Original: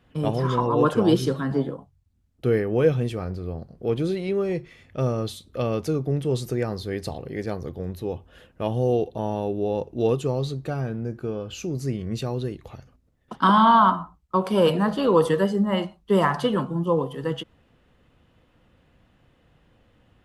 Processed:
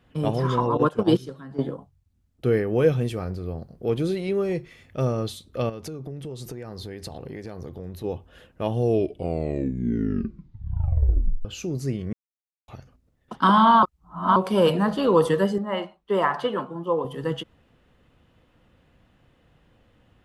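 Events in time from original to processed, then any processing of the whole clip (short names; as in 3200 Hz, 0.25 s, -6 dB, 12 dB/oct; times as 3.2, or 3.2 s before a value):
0.77–1.59 gate -19 dBFS, range -14 dB
2.68–5.05 high shelf 9900 Hz +7.5 dB
5.69–8.04 compressor 16:1, threshold -31 dBFS
8.71 tape stop 2.74 s
12.13–12.68 mute
13.83–14.36 reverse
15.58–17.05 tone controls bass -14 dB, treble -11 dB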